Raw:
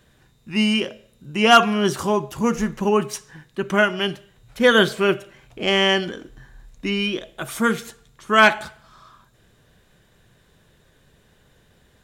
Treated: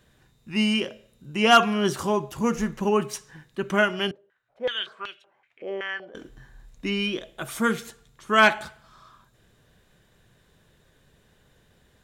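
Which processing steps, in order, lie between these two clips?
4.11–6.15 stepped band-pass 5.3 Hz 470–3700 Hz; gain -3.5 dB

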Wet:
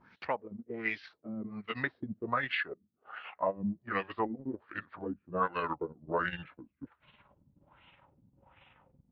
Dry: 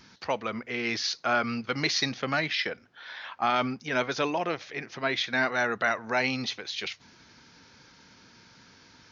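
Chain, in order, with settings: gliding pitch shift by -10 st starting unshifted; LFO low-pass sine 1.3 Hz 210–2800 Hz; transient shaper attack +3 dB, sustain -8 dB; gain -8 dB

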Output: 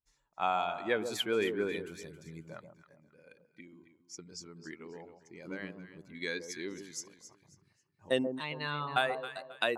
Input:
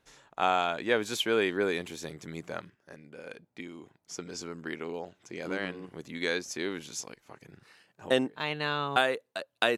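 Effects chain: per-bin expansion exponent 1.5; echo with dull and thin repeats by turns 0.135 s, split 960 Hz, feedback 54%, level -7 dB; gain -2.5 dB

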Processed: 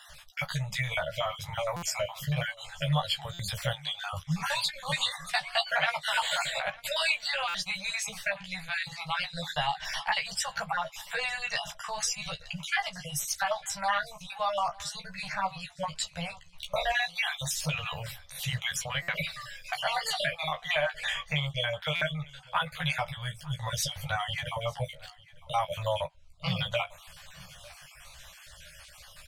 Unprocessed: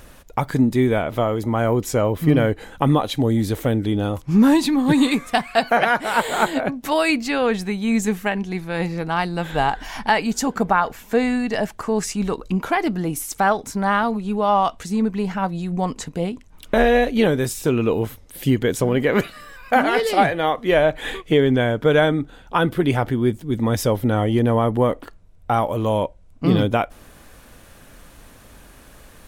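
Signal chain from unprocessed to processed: random spectral dropouts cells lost 41%; elliptic band-stop 160–580 Hz, stop band 40 dB; bell 3900 Hz +13.5 dB 2.7 oct; compressor 2:1, threshold -22 dBFS, peak gain reduction 8.5 dB; chorus voices 2, 0.68 Hz, delay 14 ms, depth 2 ms; doubler 20 ms -13.5 dB; echo 0.902 s -22.5 dB; stuck buffer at 1.76/3.33/7.48/19.02/21.95, samples 256, times 10; gain -4 dB

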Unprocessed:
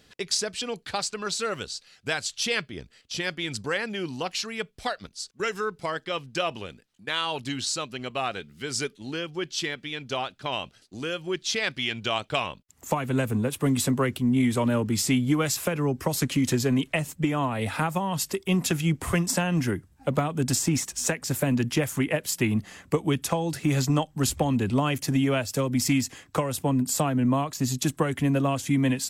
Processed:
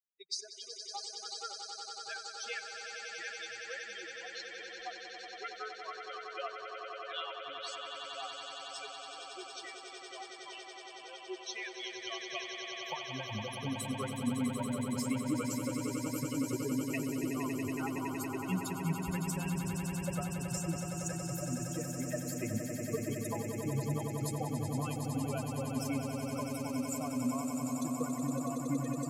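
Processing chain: per-bin expansion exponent 3; on a send: swelling echo 93 ms, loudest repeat 8, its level -8 dB; on the sum: gain -7.5 dB

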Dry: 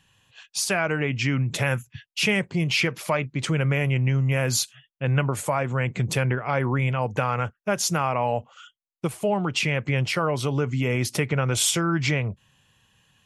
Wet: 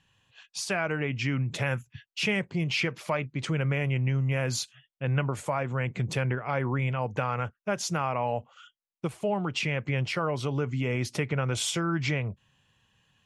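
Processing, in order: air absorption 51 m; gain -4.5 dB

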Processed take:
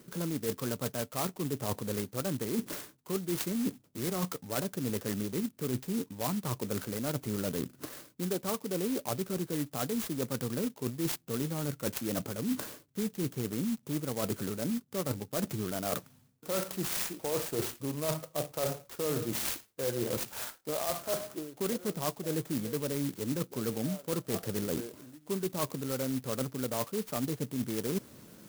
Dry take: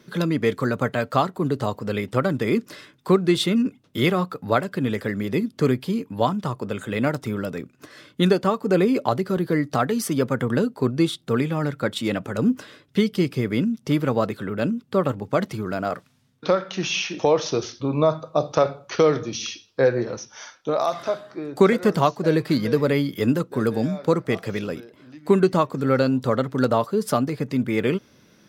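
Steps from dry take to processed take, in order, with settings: reverse; compressor 16:1, threshold -32 dBFS, peak gain reduction 23 dB; reverse; clock jitter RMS 0.13 ms; gain +2.5 dB

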